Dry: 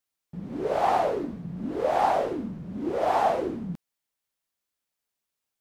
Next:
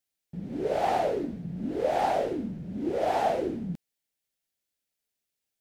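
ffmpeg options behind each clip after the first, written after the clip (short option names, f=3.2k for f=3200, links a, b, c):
-af "equalizer=f=1.1k:t=o:w=0.61:g=-11.5"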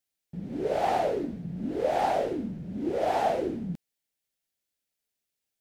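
-af anull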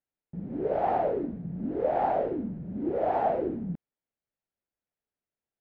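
-af "lowpass=1.4k"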